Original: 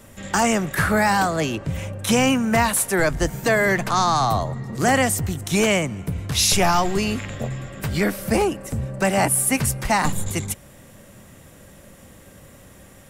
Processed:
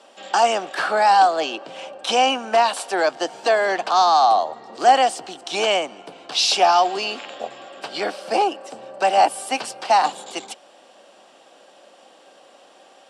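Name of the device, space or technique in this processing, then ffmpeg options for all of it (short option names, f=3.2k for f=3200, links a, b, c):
phone speaker on a table: -af "highpass=f=350:w=0.5412,highpass=f=350:w=1.3066,equalizer=f=420:t=q:w=4:g=-3,equalizer=f=760:t=q:w=4:g=10,equalizer=f=2k:t=q:w=4:g=-9,equalizer=f=3k:t=q:w=4:g=6,equalizer=f=4.5k:t=q:w=4:g=5,equalizer=f=6.7k:t=q:w=4:g=-7,lowpass=f=7.2k:w=0.5412,lowpass=f=7.2k:w=1.3066"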